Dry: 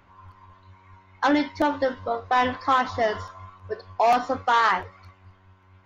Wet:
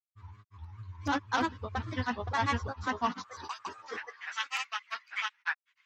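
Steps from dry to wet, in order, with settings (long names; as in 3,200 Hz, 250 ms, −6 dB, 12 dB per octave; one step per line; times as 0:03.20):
high-pass filter sweep 85 Hz → 2,200 Hz, 0:02.43–0:04.23
graphic EQ with 15 bands 100 Hz +5 dB, 630 Hz −12 dB, 6,300 Hz +6 dB
granular cloud, spray 810 ms, pitch spread up and down by 3 semitones
level −4.5 dB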